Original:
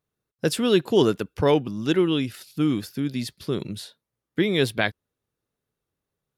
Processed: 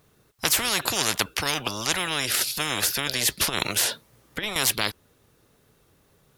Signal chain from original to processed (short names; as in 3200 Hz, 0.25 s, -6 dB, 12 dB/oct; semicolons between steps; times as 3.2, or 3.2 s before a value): 3.41–4.56 negative-ratio compressor -28 dBFS, ratio -0.5; spectral compressor 10:1; gain +2.5 dB